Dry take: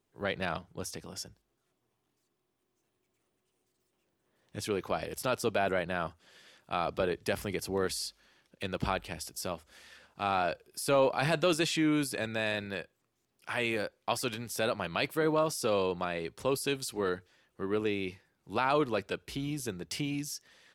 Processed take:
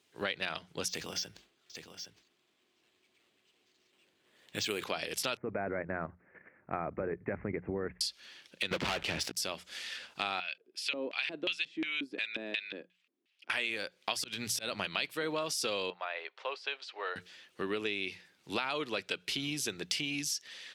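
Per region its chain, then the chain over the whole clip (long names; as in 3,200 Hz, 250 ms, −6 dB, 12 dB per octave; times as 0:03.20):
0:00.88–0:04.84: bad sample-rate conversion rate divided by 4×, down filtered, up hold + single-tap delay 816 ms −11.5 dB + level that may fall only so fast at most 130 dB per second
0:05.37–0:08.01: Butterworth low-pass 2,200 Hz 72 dB per octave + spectral tilt −3.5 dB per octave + output level in coarse steps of 10 dB
0:08.71–0:09.37: low-pass filter 1,300 Hz 6 dB per octave + leveller curve on the samples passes 5
0:10.40–0:13.50: high-pass filter 210 Hz + auto-filter band-pass square 2.8 Hz 280–2,700 Hz
0:14.16–0:14.86: volume swells 237 ms + bass and treble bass +6 dB, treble +1 dB
0:15.90–0:17.16: one scale factor per block 7 bits + high-pass filter 620 Hz 24 dB per octave + head-to-tape spacing loss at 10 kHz 44 dB
whole clip: meter weighting curve D; downward compressor 5 to 1, threshold −36 dBFS; mains-hum notches 60/120/180 Hz; level +4 dB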